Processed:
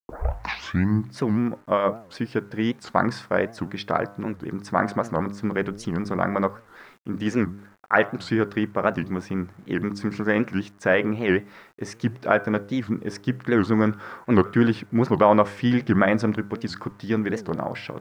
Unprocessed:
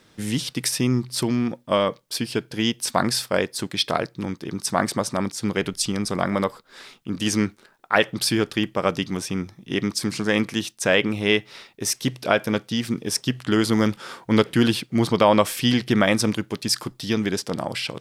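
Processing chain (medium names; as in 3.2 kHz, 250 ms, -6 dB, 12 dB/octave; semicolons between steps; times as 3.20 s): tape start-up on the opening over 1.09 s; distance through air 110 m; de-hum 100.7 Hz, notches 15; bit crusher 9-bit; resonant high shelf 2.3 kHz -9 dB, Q 1.5; warped record 78 rpm, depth 250 cents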